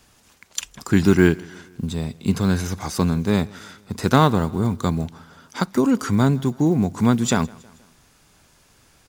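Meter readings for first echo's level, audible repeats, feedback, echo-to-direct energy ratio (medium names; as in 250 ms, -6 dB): -24.0 dB, 2, 51%, -23.0 dB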